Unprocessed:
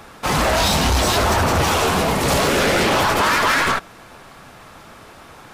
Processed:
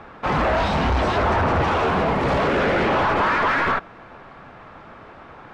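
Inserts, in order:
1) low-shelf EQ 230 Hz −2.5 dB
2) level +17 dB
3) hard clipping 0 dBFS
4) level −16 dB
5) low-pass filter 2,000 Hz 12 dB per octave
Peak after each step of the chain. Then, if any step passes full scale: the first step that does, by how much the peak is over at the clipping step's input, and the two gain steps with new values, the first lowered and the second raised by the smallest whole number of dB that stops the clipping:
−10.5, +6.5, 0.0, −16.0, −15.0 dBFS
step 2, 6.5 dB
step 2 +10 dB, step 4 −9 dB

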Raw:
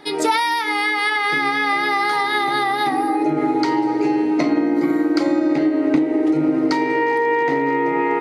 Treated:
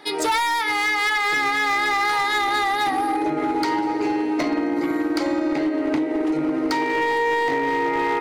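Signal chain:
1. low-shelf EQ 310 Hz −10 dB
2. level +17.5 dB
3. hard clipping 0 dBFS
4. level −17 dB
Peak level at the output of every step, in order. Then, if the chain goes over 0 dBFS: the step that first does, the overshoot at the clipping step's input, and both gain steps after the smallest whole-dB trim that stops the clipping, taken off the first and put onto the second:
−9.0, +8.5, 0.0, −17.0 dBFS
step 2, 8.5 dB
step 2 +8.5 dB, step 4 −8 dB

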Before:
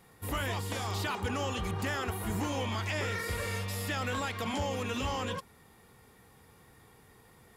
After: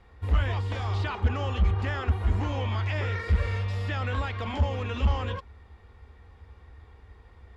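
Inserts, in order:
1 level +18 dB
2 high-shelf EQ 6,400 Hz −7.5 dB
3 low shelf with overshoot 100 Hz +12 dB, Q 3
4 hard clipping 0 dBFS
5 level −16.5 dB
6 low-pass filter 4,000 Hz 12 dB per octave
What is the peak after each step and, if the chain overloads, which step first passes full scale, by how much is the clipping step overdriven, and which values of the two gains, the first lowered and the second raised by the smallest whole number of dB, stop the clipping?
−6.5, −7.0, +8.0, 0.0, −16.5, −16.5 dBFS
step 3, 8.0 dB
step 1 +10 dB, step 5 −8.5 dB

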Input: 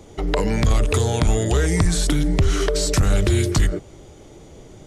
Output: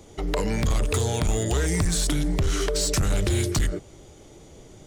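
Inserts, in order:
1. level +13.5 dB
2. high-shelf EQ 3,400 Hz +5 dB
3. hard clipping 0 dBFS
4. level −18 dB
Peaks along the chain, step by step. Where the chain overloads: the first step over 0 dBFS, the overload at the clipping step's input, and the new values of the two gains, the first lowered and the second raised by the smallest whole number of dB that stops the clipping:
+4.0, +7.5, 0.0, −18.0 dBFS
step 1, 7.5 dB
step 1 +5.5 dB, step 4 −10 dB

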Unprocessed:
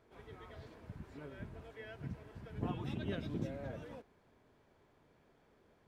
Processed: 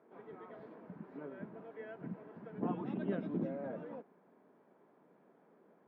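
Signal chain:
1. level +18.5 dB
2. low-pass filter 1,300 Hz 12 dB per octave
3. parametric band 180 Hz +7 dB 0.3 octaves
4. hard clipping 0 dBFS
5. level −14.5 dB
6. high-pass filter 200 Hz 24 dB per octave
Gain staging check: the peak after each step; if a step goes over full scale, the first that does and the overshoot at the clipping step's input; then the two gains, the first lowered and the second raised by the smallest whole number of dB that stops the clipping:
−3.5, −4.0, −3.5, −3.5, −18.0, −22.5 dBFS
no step passes full scale

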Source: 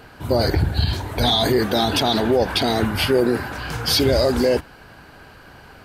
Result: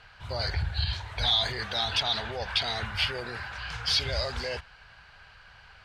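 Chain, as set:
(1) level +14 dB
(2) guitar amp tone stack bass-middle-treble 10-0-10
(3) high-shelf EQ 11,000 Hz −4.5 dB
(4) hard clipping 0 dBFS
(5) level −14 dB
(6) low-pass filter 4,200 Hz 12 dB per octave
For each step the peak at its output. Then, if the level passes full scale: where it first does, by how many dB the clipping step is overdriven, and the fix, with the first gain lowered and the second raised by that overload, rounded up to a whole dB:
+6.5, +5.0, +4.5, 0.0, −14.0, −14.5 dBFS
step 1, 4.5 dB
step 1 +9 dB, step 5 −9 dB

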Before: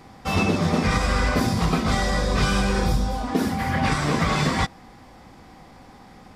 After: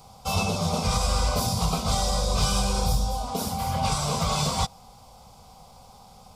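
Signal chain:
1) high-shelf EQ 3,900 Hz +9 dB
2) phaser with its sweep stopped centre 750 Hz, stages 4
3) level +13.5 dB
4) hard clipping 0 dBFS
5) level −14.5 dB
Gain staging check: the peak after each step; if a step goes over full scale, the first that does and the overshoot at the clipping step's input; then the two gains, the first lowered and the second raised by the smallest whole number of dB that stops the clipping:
−8.5, −10.5, +3.0, 0.0, −14.5 dBFS
step 3, 3.0 dB
step 3 +10.5 dB, step 5 −11.5 dB

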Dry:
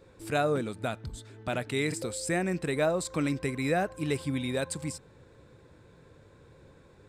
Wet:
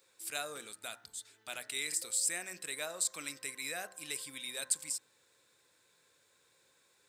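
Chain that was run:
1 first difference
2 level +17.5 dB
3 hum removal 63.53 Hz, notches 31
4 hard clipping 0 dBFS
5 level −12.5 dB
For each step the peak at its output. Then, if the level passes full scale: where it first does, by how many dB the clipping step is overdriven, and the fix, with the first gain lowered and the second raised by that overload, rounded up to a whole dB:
−21.0, −3.5, −3.5, −3.5, −16.0 dBFS
no step passes full scale

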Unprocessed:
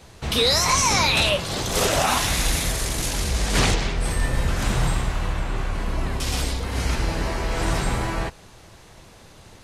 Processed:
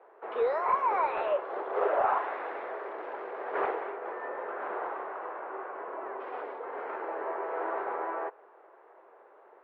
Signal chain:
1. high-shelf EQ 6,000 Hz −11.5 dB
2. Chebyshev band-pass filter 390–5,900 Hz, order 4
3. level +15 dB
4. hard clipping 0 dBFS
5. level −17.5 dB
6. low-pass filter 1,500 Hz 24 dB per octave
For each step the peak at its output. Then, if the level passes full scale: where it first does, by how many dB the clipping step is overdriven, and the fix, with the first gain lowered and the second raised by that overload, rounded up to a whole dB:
−9.5, −10.5, +4.5, 0.0, −17.5, −17.0 dBFS
step 3, 4.5 dB
step 3 +10 dB, step 5 −12.5 dB

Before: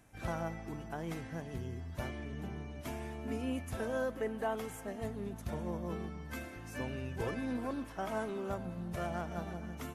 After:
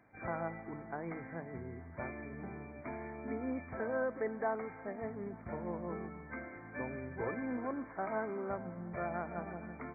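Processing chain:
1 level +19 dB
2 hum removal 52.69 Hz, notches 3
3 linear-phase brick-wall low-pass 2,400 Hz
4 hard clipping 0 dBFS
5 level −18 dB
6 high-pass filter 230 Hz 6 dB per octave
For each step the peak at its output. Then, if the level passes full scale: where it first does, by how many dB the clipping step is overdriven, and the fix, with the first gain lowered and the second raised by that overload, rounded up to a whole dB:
−5.5, −4.5, −4.5, −4.5, −22.5, −23.5 dBFS
no step passes full scale

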